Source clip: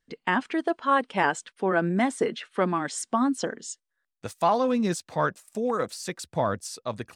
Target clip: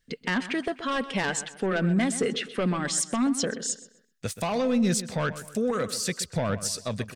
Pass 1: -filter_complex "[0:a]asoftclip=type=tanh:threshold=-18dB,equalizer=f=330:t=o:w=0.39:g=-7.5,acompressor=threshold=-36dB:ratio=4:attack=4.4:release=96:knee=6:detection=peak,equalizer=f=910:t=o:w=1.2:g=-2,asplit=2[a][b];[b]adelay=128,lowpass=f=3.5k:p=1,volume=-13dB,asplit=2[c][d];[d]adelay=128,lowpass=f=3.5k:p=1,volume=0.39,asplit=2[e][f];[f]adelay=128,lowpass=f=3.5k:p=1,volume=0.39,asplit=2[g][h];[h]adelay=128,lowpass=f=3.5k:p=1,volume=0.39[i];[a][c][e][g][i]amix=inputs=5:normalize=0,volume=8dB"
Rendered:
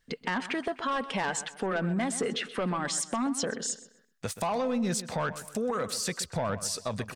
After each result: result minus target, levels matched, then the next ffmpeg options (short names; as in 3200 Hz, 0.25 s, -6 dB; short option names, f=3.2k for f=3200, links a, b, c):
compressor: peak gain reduction +7 dB; 1000 Hz band +4.0 dB
-filter_complex "[0:a]asoftclip=type=tanh:threshold=-18dB,equalizer=f=330:t=o:w=0.39:g=-7.5,acompressor=threshold=-26.5dB:ratio=4:attack=4.4:release=96:knee=6:detection=peak,equalizer=f=910:t=o:w=1.2:g=-2,asplit=2[a][b];[b]adelay=128,lowpass=f=3.5k:p=1,volume=-13dB,asplit=2[c][d];[d]adelay=128,lowpass=f=3.5k:p=1,volume=0.39,asplit=2[e][f];[f]adelay=128,lowpass=f=3.5k:p=1,volume=0.39,asplit=2[g][h];[h]adelay=128,lowpass=f=3.5k:p=1,volume=0.39[i];[a][c][e][g][i]amix=inputs=5:normalize=0,volume=8dB"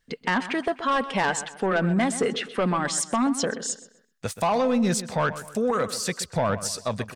1000 Hz band +5.0 dB
-filter_complex "[0:a]asoftclip=type=tanh:threshold=-18dB,equalizer=f=330:t=o:w=0.39:g=-7.5,acompressor=threshold=-26.5dB:ratio=4:attack=4.4:release=96:knee=6:detection=peak,equalizer=f=910:t=o:w=1.2:g=-11,asplit=2[a][b];[b]adelay=128,lowpass=f=3.5k:p=1,volume=-13dB,asplit=2[c][d];[d]adelay=128,lowpass=f=3.5k:p=1,volume=0.39,asplit=2[e][f];[f]adelay=128,lowpass=f=3.5k:p=1,volume=0.39,asplit=2[g][h];[h]adelay=128,lowpass=f=3.5k:p=1,volume=0.39[i];[a][c][e][g][i]amix=inputs=5:normalize=0,volume=8dB"